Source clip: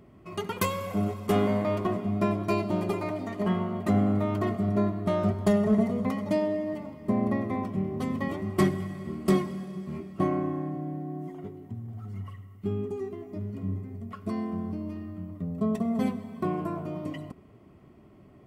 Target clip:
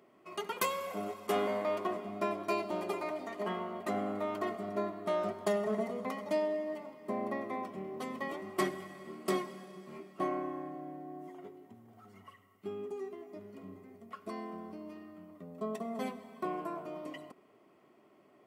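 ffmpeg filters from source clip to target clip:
ffmpeg -i in.wav -af "highpass=410,volume=-3dB" out.wav

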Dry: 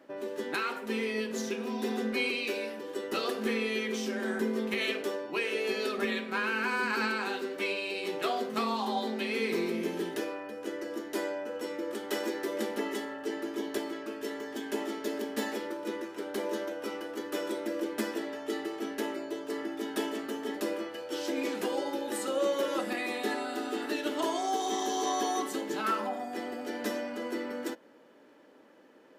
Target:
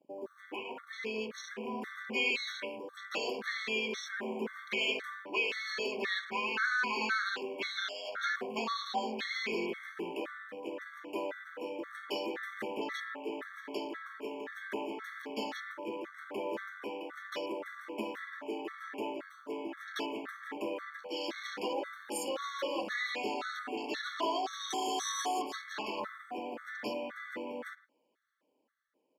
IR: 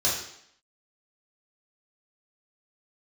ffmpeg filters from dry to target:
-filter_complex "[0:a]asettb=1/sr,asplit=3[link_01][link_02][link_03];[link_01]atrim=end=7.774[link_04];[link_02]atrim=start=7.77:end=8.36,asetpts=PTS-STARTPTS,afade=type=in:duration=0.004:curve=qsin,afade=type=out:start_time=0.586:duration=0.004:curve=qsin,aeval=exprs='val(0)*sin(2*PI*1000*n/s)':channel_layout=same[link_05];[link_03]atrim=start=8.356[link_06];[link_04][link_05]acrossfade=duration=0.004:curve1=hsin:curve2=qsin[link_07];[link_07][link_06]acrossfade=duration=0.004:curve1=qsin:curve2=hsin,asplit=2[link_08][link_09];[link_09]asoftclip=type=tanh:threshold=-34.5dB,volume=-5.5dB[link_10];[link_08][link_10]amix=inputs=2:normalize=0,lowshelf=frequency=140:gain=-9.5,acrossover=split=850[link_11][link_12];[link_11]acrusher=bits=4:mode=log:mix=0:aa=0.000001[link_13];[link_12]dynaudnorm=framelen=120:gausssize=21:maxgain=7dB[link_14];[link_13][link_14]amix=inputs=2:normalize=0,afwtdn=0.0141,asplit=2[link_15][link_16];[link_16]adelay=110,highpass=300,lowpass=3400,asoftclip=type=hard:threshold=-21.5dB,volume=-18dB[link_17];[link_15][link_17]amix=inputs=2:normalize=0,afftfilt=real='re*gt(sin(2*PI*1.9*pts/sr)*(1-2*mod(floor(b*sr/1024/1100),2)),0)':imag='im*gt(sin(2*PI*1.9*pts/sr)*(1-2*mod(floor(b*sr/1024/1100),2)),0)':win_size=1024:overlap=0.75,volume=-5.5dB"

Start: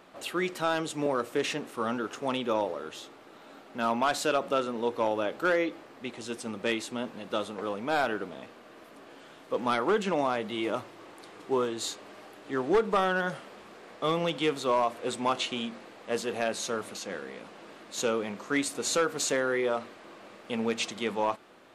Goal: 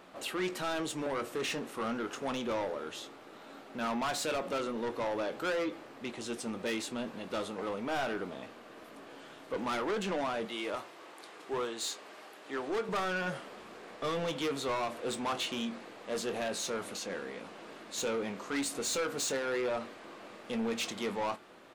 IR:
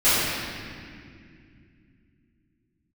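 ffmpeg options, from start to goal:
-filter_complex "[0:a]asettb=1/sr,asplit=3[link_01][link_02][link_03];[link_01]atrim=end=10.454[link_04];[link_02]atrim=start=10.45:end=12.89,asetpts=PTS-STARTPTS,afade=type=in:duration=0.004:curve=qsin,afade=type=out:start_time=2.436:duration=0.004:curve=qsin,highpass=frequency=540:poles=1[link_05];[link_03]atrim=start=12.886[link_06];[link_04][link_05]acrossfade=duration=0.004:curve1=hsin:curve2=qsin[link_07];[link_07][link_06]acrossfade=duration=0.004:curve1=qsin:curve2=hsin,asoftclip=type=tanh:threshold=-29.5dB,asplit=2[link_08][link_09];[link_09]adelay=22,volume=-12.5dB[link_10];[link_08][link_10]amix=inputs=2:normalize=0"

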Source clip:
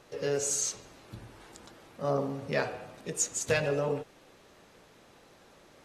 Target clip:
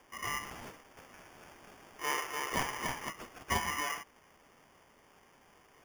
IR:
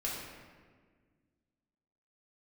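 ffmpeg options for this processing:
-filter_complex "[0:a]acrossover=split=490 3700:gain=0.178 1 0.112[link_01][link_02][link_03];[link_01][link_02][link_03]amix=inputs=3:normalize=0,aeval=exprs='val(0)*sin(2*PI*1600*n/s)':channel_layout=same,equalizer=frequency=370:width_type=o:width=2.8:gain=4.5,asettb=1/sr,asplit=3[link_04][link_05][link_06];[link_04]atrim=end=0.684[link_07];[link_05]atrim=start=0.68:end=3.09,asetpts=PTS-STARTPTS,afade=type=in:duration=0.004:curve=qsin,afade=type=out:start_time=2.406:duration=0.004:curve=qsin,aecho=1:1:290|507.5|670.6|793|884.7:0.631|0.398|0.251|0.158|0.1,atrim=end_sample=106281[link_08];[link_06]atrim=start=3.086[link_09];[link_07][link_08]acrossfade=duration=0.004:curve1=hsin:curve2=qsin[link_10];[link_10][link_09]acrossfade=duration=0.004:curve1=qsin:curve2=hsin,acrusher=samples=11:mix=1:aa=0.000001"

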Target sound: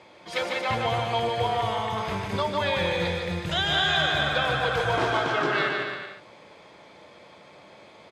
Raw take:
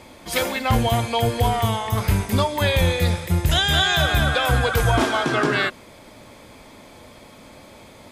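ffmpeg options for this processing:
ffmpeg -i in.wav -af "highpass=170,lowpass=4400,equalizer=frequency=250:width=4.7:gain=-14,aecho=1:1:150|270|366|442.8|504.2:0.631|0.398|0.251|0.158|0.1,volume=-5dB" out.wav

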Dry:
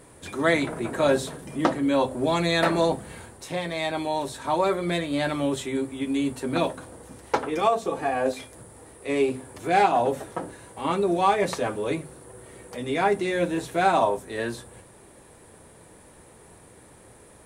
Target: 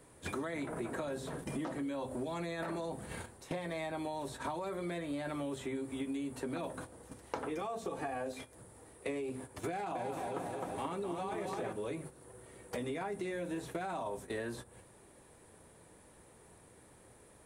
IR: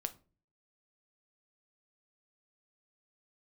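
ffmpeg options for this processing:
-filter_complex "[0:a]alimiter=limit=-16.5dB:level=0:latency=1:release=16,acrossover=split=220|2300|7300[link_01][link_02][link_03][link_04];[link_01]acompressor=threshold=-38dB:ratio=4[link_05];[link_02]acompressor=threshold=-28dB:ratio=4[link_06];[link_03]acompressor=threshold=-50dB:ratio=4[link_07];[link_04]acompressor=threshold=-50dB:ratio=4[link_08];[link_05][link_06][link_07][link_08]amix=inputs=4:normalize=0,agate=range=-14dB:threshold=-40dB:ratio=16:detection=peak,asettb=1/sr,asplit=3[link_09][link_10][link_11];[link_09]atrim=end=9.694[link_12];[link_10]atrim=start=9.69:end=11.73,asetpts=PTS-STARTPTS,afade=type=in:duration=0.004:curve=qsin,afade=type=out:start_time=2.036:duration=0.004:curve=qsin,aecho=1:1:260|481|668.8|828.5|964.2:0.631|0.398|0.251|0.158|0.1,atrim=end_sample=89964[link_13];[link_11]atrim=start=11.726[link_14];[link_12][link_13]acrossfade=duration=0.004:curve1=hsin:curve2=qsin[link_15];[link_15][link_14]acrossfade=duration=0.004:curve1=qsin:curve2=hsin,acompressor=threshold=-42dB:ratio=6,volume=5dB"

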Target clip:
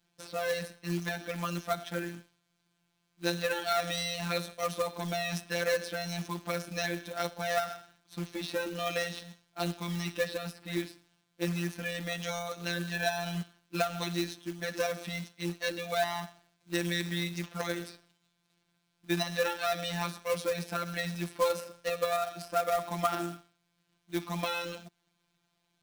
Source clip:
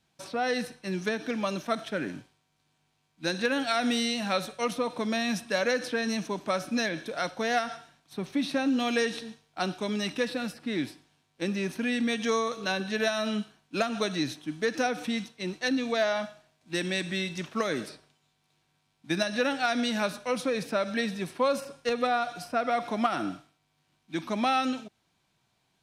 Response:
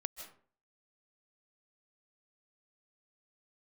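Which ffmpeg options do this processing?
-af "afftfilt=real='hypot(re,im)*cos(PI*b)':imag='0':win_size=1024:overlap=0.75,acrusher=bits=3:mode=log:mix=0:aa=0.000001"

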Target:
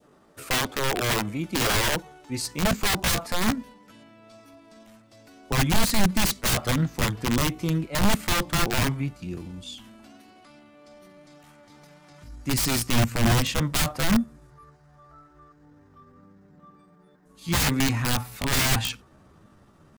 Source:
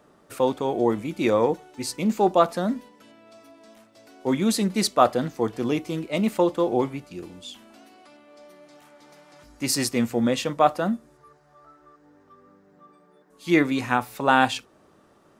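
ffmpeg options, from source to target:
ffmpeg -i in.wav -af "adynamicequalizer=threshold=0.0158:dfrequency=1300:dqfactor=0.81:tfrequency=1300:tqfactor=0.81:attack=5:release=100:ratio=0.375:range=1.5:mode=boostabove:tftype=bell,aeval=exprs='(mod(7.94*val(0)+1,2)-1)/7.94':channel_layout=same,asubboost=boost=4.5:cutoff=180,atempo=0.77" out.wav

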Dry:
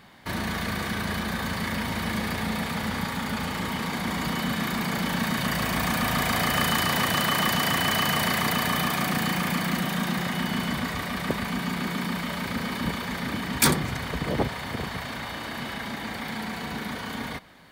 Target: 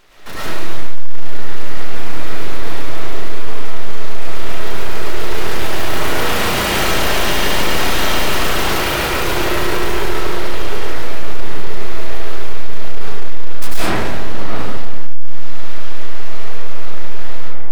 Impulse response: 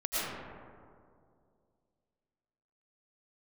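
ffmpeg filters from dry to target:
-filter_complex "[0:a]aeval=exprs='abs(val(0))':channel_layout=same[link_01];[1:a]atrim=start_sample=2205[link_02];[link_01][link_02]afir=irnorm=-1:irlink=0,acontrast=34,volume=-1dB"

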